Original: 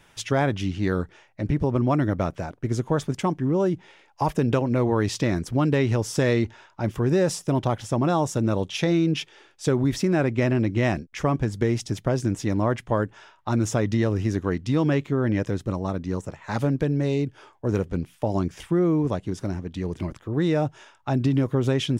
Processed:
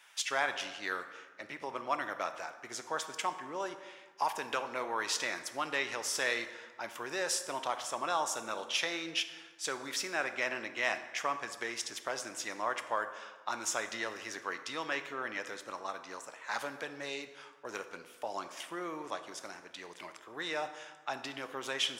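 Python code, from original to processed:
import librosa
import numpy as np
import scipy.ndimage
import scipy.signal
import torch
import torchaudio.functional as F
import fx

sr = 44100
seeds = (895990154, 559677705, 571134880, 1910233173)

y = scipy.signal.sosfilt(scipy.signal.butter(2, 1100.0, 'highpass', fs=sr, output='sos'), x)
y = fx.rev_plate(y, sr, seeds[0], rt60_s=1.4, hf_ratio=0.6, predelay_ms=0, drr_db=8.5)
y = y * librosa.db_to_amplitude(-1.0)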